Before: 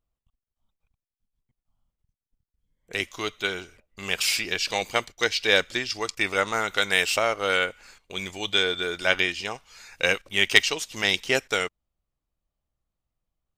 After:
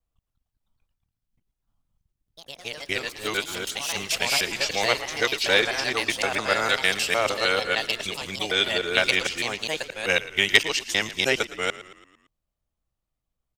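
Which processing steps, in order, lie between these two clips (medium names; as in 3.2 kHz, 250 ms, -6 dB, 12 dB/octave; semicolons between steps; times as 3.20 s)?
time reversed locally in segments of 152 ms; ever faster or slower copies 218 ms, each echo +3 st, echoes 3, each echo -6 dB; frequency-shifting echo 113 ms, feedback 52%, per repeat -44 Hz, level -16 dB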